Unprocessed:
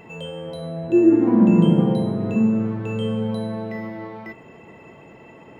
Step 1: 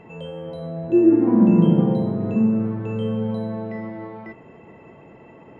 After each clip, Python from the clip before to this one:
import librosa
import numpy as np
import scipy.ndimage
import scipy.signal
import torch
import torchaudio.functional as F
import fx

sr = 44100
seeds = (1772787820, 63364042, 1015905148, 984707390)

y = fx.lowpass(x, sr, hz=1600.0, slope=6)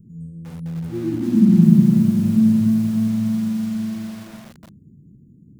y = scipy.signal.sosfilt(scipy.signal.cheby2(4, 70, [760.0, 2900.0], 'bandstop', fs=sr, output='sos'), x)
y = fx.echo_crushed(y, sr, ms=295, feedback_pct=55, bits=7, wet_db=-5.0)
y = y * 10.0 ** (4.5 / 20.0)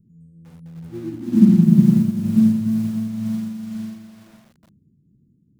y = x * (1.0 - 0.31 / 2.0 + 0.31 / 2.0 * np.cos(2.0 * np.pi * 2.1 * (np.arange(len(x)) / sr)))
y = fx.upward_expand(y, sr, threshold_db=-34.0, expansion=1.5)
y = y * 10.0 ** (3.0 / 20.0)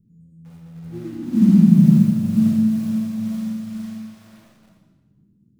y = fx.rev_freeverb(x, sr, rt60_s=1.2, hf_ratio=0.95, predelay_ms=5, drr_db=-2.0)
y = y * 10.0 ** (-3.0 / 20.0)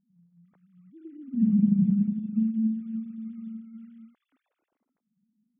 y = fx.sine_speech(x, sr)
y = fx.low_shelf(y, sr, hz=410.0, db=-4.0)
y = y * 10.0 ** (-7.0 / 20.0)